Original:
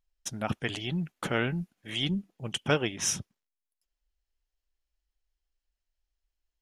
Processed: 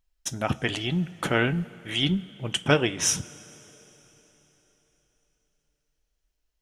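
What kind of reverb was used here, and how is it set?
coupled-rooms reverb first 0.22 s, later 4 s, from −20 dB, DRR 11 dB
level +5 dB

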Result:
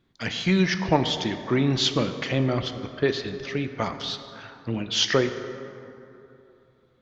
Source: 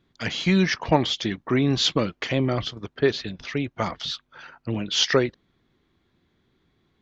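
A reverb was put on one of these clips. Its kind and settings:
dense smooth reverb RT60 3 s, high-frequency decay 0.45×, DRR 8 dB
level −1.5 dB

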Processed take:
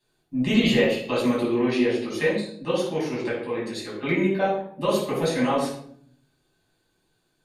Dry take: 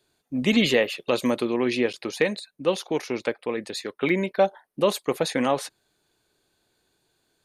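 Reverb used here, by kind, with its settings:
rectangular room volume 920 cubic metres, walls furnished, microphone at 9.5 metres
level −11 dB

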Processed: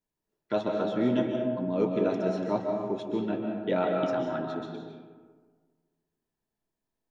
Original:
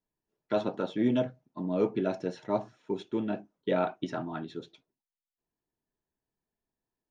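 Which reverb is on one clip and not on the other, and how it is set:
comb and all-pass reverb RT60 1.6 s, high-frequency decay 0.45×, pre-delay 105 ms, DRR 1.5 dB

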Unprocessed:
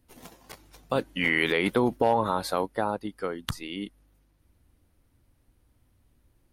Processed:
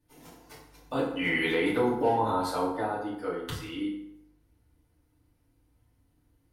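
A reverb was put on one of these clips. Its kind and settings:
feedback delay network reverb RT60 0.81 s, low-frequency decay 0.95×, high-frequency decay 0.65×, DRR −8.5 dB
level −11.5 dB

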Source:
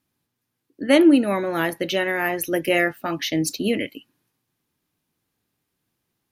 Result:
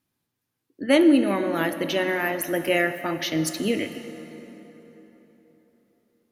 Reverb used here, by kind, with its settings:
dense smooth reverb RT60 4.1 s, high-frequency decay 0.6×, DRR 9 dB
level −2.5 dB

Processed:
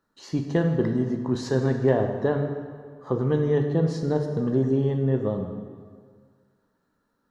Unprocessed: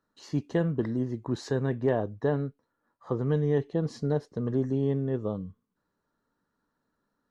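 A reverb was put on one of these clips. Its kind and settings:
dense smooth reverb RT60 1.8 s, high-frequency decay 0.75×, DRR 4 dB
level +3.5 dB

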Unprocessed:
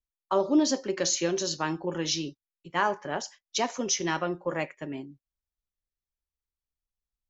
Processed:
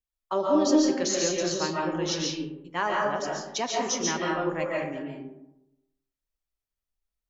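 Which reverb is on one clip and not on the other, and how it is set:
comb and all-pass reverb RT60 0.9 s, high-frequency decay 0.4×, pre-delay 100 ms, DRR −2.5 dB
level −2.5 dB

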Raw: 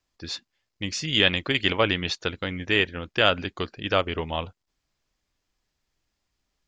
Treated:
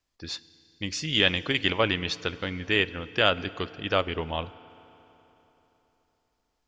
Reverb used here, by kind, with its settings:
feedback delay network reverb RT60 3.7 s, high-frequency decay 0.8×, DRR 16.5 dB
level −2 dB

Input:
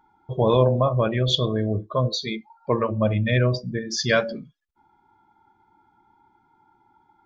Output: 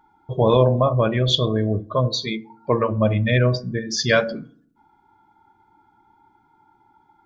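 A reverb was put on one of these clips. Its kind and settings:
feedback delay network reverb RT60 0.58 s, low-frequency decay 1.5×, high-frequency decay 0.45×, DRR 17 dB
level +2.5 dB

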